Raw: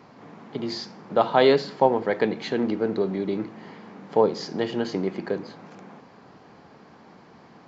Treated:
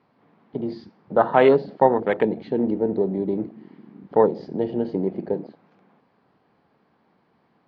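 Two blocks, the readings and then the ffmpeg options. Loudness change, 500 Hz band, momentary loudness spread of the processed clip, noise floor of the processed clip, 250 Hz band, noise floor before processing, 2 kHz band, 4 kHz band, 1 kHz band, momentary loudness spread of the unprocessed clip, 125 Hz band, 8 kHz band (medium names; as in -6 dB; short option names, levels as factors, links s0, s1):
+2.5 dB, +2.5 dB, 14 LU, -65 dBFS, +2.5 dB, -51 dBFS, 0.0 dB, under -10 dB, +2.0 dB, 17 LU, +2.0 dB, no reading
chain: -af "lowpass=f=4400:w=0.5412,lowpass=f=4400:w=1.3066,afwtdn=0.0355,volume=1.33"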